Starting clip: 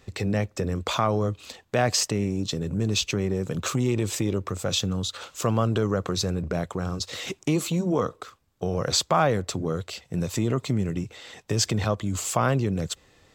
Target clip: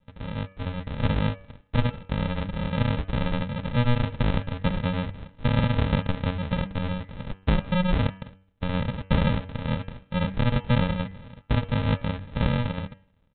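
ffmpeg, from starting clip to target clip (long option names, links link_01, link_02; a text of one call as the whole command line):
ffmpeg -i in.wav -af "aresample=8000,acrusher=samples=22:mix=1:aa=0.000001,aresample=44100,bandreject=frequency=95.32:width_type=h:width=4,bandreject=frequency=190.64:width_type=h:width=4,bandreject=frequency=285.96:width_type=h:width=4,bandreject=frequency=381.28:width_type=h:width=4,bandreject=frequency=476.6:width_type=h:width=4,bandreject=frequency=571.92:width_type=h:width=4,bandreject=frequency=667.24:width_type=h:width=4,bandreject=frequency=762.56:width_type=h:width=4,bandreject=frequency=857.88:width_type=h:width=4,bandreject=frequency=953.2:width_type=h:width=4,bandreject=frequency=1048.52:width_type=h:width=4,bandreject=frequency=1143.84:width_type=h:width=4,bandreject=frequency=1239.16:width_type=h:width=4,bandreject=frequency=1334.48:width_type=h:width=4,bandreject=frequency=1429.8:width_type=h:width=4,bandreject=frequency=1525.12:width_type=h:width=4,bandreject=frequency=1620.44:width_type=h:width=4,bandreject=frequency=1715.76:width_type=h:width=4,bandreject=frequency=1811.08:width_type=h:width=4,bandreject=frequency=1906.4:width_type=h:width=4,bandreject=frequency=2001.72:width_type=h:width=4,bandreject=frequency=2097.04:width_type=h:width=4,bandreject=frequency=2192.36:width_type=h:width=4,bandreject=frequency=2287.68:width_type=h:width=4,bandreject=frequency=2383:width_type=h:width=4,bandreject=frequency=2478.32:width_type=h:width=4,bandreject=frequency=2573.64:width_type=h:width=4,bandreject=frequency=2668.96:width_type=h:width=4,bandreject=frequency=2764.28:width_type=h:width=4,bandreject=frequency=2859.6:width_type=h:width=4,bandreject=frequency=2954.92:width_type=h:width=4,bandreject=frequency=3050.24:width_type=h:width=4,bandreject=frequency=3145.56:width_type=h:width=4,dynaudnorm=framelen=150:gausssize=9:maxgain=11.5dB,volume=-8dB" out.wav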